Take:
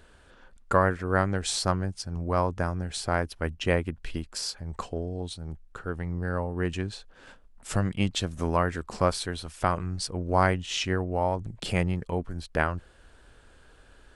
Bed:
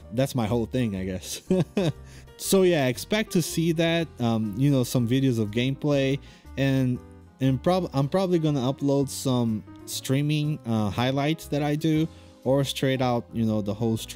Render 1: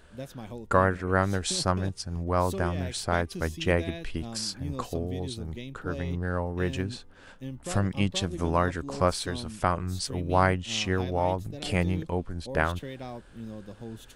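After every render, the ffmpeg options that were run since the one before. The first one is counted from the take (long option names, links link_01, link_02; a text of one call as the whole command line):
ffmpeg -i in.wav -i bed.wav -filter_complex "[1:a]volume=-15.5dB[link_01];[0:a][link_01]amix=inputs=2:normalize=0" out.wav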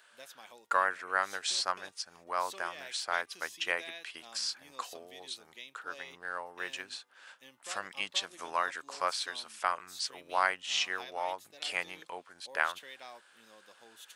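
ffmpeg -i in.wav -filter_complex "[0:a]highpass=1100,acrossover=split=7200[link_01][link_02];[link_02]acompressor=threshold=-50dB:ratio=4:attack=1:release=60[link_03];[link_01][link_03]amix=inputs=2:normalize=0" out.wav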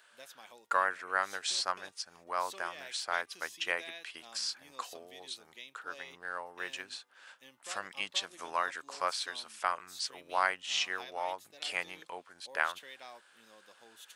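ffmpeg -i in.wav -af "volume=-1dB" out.wav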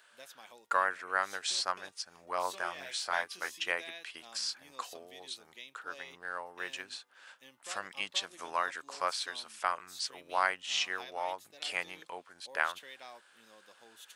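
ffmpeg -i in.wav -filter_complex "[0:a]asettb=1/sr,asplit=3[link_01][link_02][link_03];[link_01]atrim=end=2.214[link_04];[link_02]atrim=start=2.21:end=3.61,asetpts=PTS-STARTPTS,afade=type=in:duration=0.004:curve=qsin,afade=type=out:start_time=1.396:duration=0.004:curve=qsin,asplit=2[link_05][link_06];[link_06]adelay=22,volume=-4.5dB[link_07];[link_05][link_07]amix=inputs=2:normalize=0,atrim=end_sample=61740[link_08];[link_03]atrim=start=3.606[link_09];[link_04][link_08]acrossfade=duration=0.004:curve1=hsin:curve2=qsin[link_10];[link_10][link_09]acrossfade=duration=0.004:curve1=qsin:curve2=hsin" out.wav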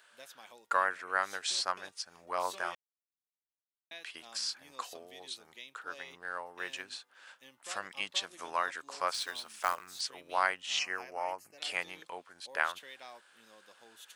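ffmpeg -i in.wav -filter_complex "[0:a]asettb=1/sr,asplit=3[link_01][link_02][link_03];[link_01]atrim=end=9.144[link_04];[link_02]atrim=start=9.14:end=10.01,asetpts=PTS-STARTPTS,afade=type=in:duration=0.004:curve=qsin,afade=type=out:start_time=0.866:duration=0.004:curve=qsin,acrusher=bits=3:mode=log:mix=0:aa=0.000001[link_05];[link_03]atrim=start=10.006[link_06];[link_04][link_05]acrossfade=duration=0.004:curve1=hsin:curve2=qsin[link_07];[link_07][link_06]acrossfade=duration=0.004:curve1=qsin:curve2=hsin,asettb=1/sr,asplit=3[link_08][link_09][link_10];[link_08]atrim=end=10.794[link_11];[link_09]atrim=start=10.79:end=11.58,asetpts=PTS-STARTPTS,afade=type=in:duration=0.004:curve=qsin,afade=type=out:start_time=0.786:duration=0.004:curve=qsin,asuperstop=centerf=3600:order=4:qfactor=2.2[link_12];[link_10]atrim=start=11.576[link_13];[link_11][link_12]acrossfade=duration=0.004:curve1=hsin:curve2=qsin[link_14];[link_14][link_13]acrossfade=duration=0.004:curve1=qsin:curve2=hsin,asplit=3[link_15][link_16][link_17];[link_15]atrim=end=2.75,asetpts=PTS-STARTPTS,afade=type=out:start_time=2.746:duration=0.004:curve=hsin[link_18];[link_16]atrim=start=2.75:end=3.91,asetpts=PTS-STARTPTS,volume=0[link_19];[link_17]atrim=start=3.91,asetpts=PTS-STARTPTS,afade=type=in:duration=0.004:curve=hsin[link_20];[link_18][link_19][link_20]concat=n=3:v=0:a=1" out.wav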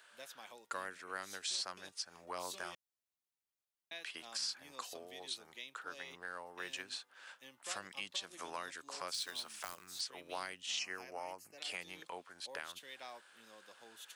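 ffmpeg -i in.wav -filter_complex "[0:a]acrossover=split=360|3000[link_01][link_02][link_03];[link_02]acompressor=threshold=-43dB:ratio=6[link_04];[link_01][link_04][link_03]amix=inputs=3:normalize=0,alimiter=level_in=4dB:limit=-24dB:level=0:latency=1:release=150,volume=-4dB" out.wav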